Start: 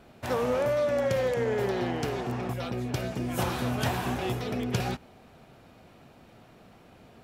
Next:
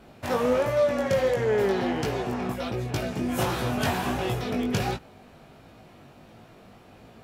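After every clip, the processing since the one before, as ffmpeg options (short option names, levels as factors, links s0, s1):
-af "flanger=delay=18:depth=2.9:speed=1.4,volume=2"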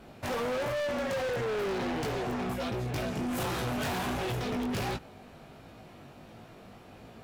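-af "volume=31.6,asoftclip=hard,volume=0.0316"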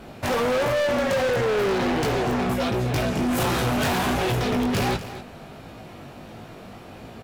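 -af "aecho=1:1:244:0.211,volume=2.82"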